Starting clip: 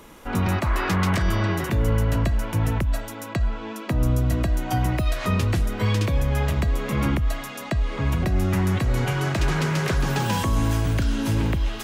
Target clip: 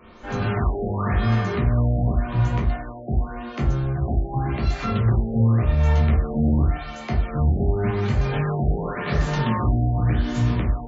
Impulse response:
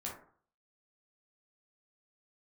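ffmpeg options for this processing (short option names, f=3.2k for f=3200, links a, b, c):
-filter_complex "[0:a]asetrate=48000,aresample=44100[a];[1:a]atrim=start_sample=2205[b];[a][b]afir=irnorm=-1:irlink=0,afftfilt=real='re*lt(b*sr/1024,800*pow(7600/800,0.5+0.5*sin(2*PI*0.89*pts/sr)))':imag='im*lt(b*sr/1024,800*pow(7600/800,0.5+0.5*sin(2*PI*0.89*pts/sr)))':win_size=1024:overlap=0.75"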